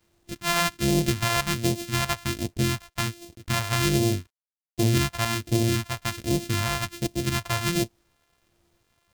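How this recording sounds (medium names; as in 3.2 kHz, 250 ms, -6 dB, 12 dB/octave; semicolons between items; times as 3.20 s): a buzz of ramps at a fixed pitch in blocks of 128 samples; phasing stages 2, 1.3 Hz, lowest notch 290–1300 Hz; a quantiser's noise floor 12-bit, dither none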